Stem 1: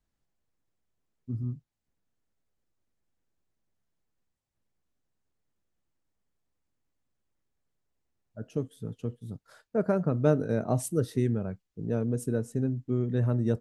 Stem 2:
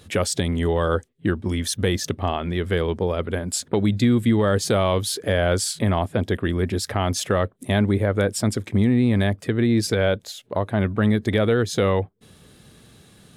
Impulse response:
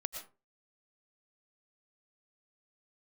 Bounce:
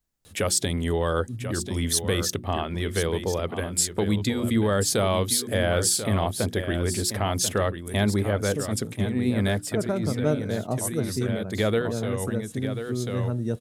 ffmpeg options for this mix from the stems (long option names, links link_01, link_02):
-filter_complex "[0:a]volume=-1dB,asplit=2[link_01][link_02];[1:a]bandreject=frequency=60:width_type=h:width=6,bandreject=frequency=120:width_type=h:width=6,bandreject=frequency=180:width_type=h:width=6,bandreject=frequency=240:width_type=h:width=6,bandreject=frequency=300:width_type=h:width=6,bandreject=frequency=360:width_type=h:width=6,adelay=250,volume=-3.5dB,asplit=2[link_03][link_04];[link_04]volume=-10dB[link_05];[link_02]apad=whole_len=600238[link_06];[link_03][link_06]sidechaincompress=threshold=-35dB:ratio=8:attack=8.6:release=224[link_07];[link_05]aecho=0:1:1039:1[link_08];[link_01][link_07][link_08]amix=inputs=3:normalize=0,highshelf=frequency=6000:gain=11"